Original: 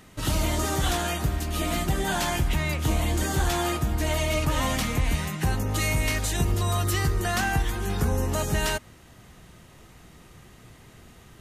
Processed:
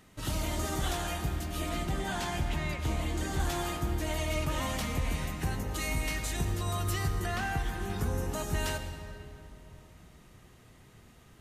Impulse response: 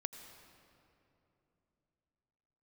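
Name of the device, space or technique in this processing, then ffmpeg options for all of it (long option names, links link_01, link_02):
stairwell: -filter_complex "[0:a]asettb=1/sr,asplit=3[link_01][link_02][link_03];[link_01]atrim=end=7.264[link_04];[link_02]atrim=start=7.26:end=7.91,asetpts=PTS-STARTPTS,afade=type=in:duration=0.004:curve=qsin,afade=type=out:start_time=0.646:duration=0.004:curve=qsin,acrossover=split=4100[link_05][link_06];[link_06]acompressor=threshold=-40dB:ratio=4:attack=1:release=60[link_07];[link_05][link_07]amix=inputs=2:normalize=0[link_08];[link_03]atrim=start=7.906[link_09];[link_04][link_08]acrossfade=duration=0.004:curve1=hsin:curve2=qsin[link_10];[link_10][link_09]acrossfade=duration=0.004:curve1=qsin:curve2=hsin[link_11];[1:a]atrim=start_sample=2205[link_12];[link_11][link_12]afir=irnorm=-1:irlink=0,asettb=1/sr,asplit=3[link_13][link_14][link_15];[link_13]atrim=end=1.694[link_16];[link_14]atrim=start=1.69:end=3.4,asetpts=PTS-STARTPTS,afade=type=in:duration=0.004:curve=qsin,afade=type=out:start_time=1.706:duration=0.004:curve=qsin,highshelf=frequency=11000:gain=-10.5[link_17];[link_15]atrim=start=3.396[link_18];[link_16][link_17]acrossfade=duration=0.004:curve1=hsin:curve2=qsin[link_19];[link_19][link_18]acrossfade=duration=0.004:curve1=qsin:curve2=hsin,volume=-5.5dB"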